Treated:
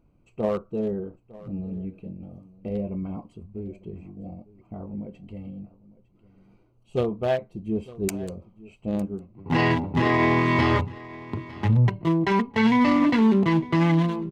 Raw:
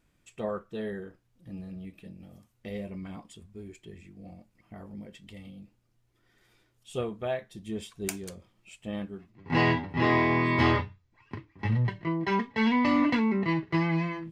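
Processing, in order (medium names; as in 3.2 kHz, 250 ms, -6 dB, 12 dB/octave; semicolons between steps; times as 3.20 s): local Wiener filter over 25 samples; peak limiter -20.5 dBFS, peak gain reduction 9 dB; on a send: delay 905 ms -20 dB; on the sum: trim +8.5 dB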